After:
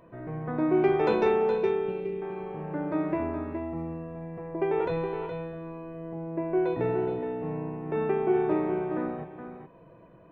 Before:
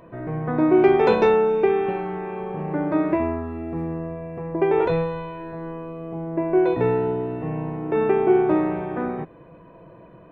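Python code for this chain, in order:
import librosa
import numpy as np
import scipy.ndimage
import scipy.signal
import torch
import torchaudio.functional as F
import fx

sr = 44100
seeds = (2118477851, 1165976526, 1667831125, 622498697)

y = fx.band_shelf(x, sr, hz=1100.0, db=-13.5, octaves=1.7, at=(1.58, 2.22))
y = y + 10.0 ** (-8.0 / 20.0) * np.pad(y, (int(418 * sr / 1000.0), 0))[:len(y)]
y = y * librosa.db_to_amplitude(-7.5)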